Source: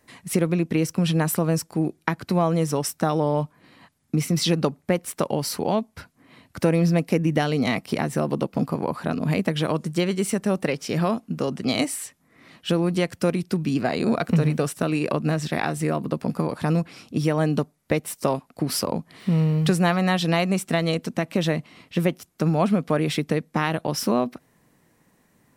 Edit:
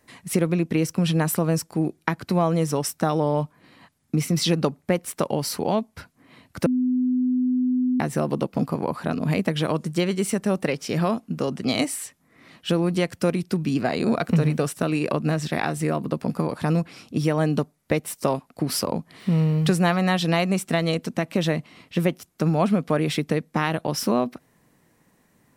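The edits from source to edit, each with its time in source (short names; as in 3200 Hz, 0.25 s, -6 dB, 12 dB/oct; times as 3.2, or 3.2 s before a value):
6.66–8 bleep 252 Hz -18.5 dBFS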